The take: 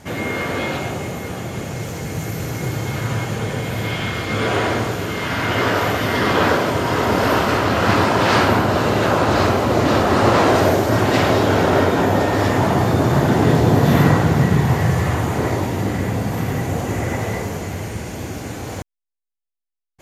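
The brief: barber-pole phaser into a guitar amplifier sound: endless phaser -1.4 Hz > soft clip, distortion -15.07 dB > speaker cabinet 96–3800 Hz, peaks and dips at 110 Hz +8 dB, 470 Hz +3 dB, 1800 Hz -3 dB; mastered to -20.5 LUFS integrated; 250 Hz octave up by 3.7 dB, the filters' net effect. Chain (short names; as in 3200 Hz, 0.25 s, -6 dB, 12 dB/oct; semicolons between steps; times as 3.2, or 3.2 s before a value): bell 250 Hz +4.5 dB; endless phaser -1.4 Hz; soft clip -12.5 dBFS; speaker cabinet 96–3800 Hz, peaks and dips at 110 Hz +8 dB, 470 Hz +3 dB, 1800 Hz -3 dB; gain +0.5 dB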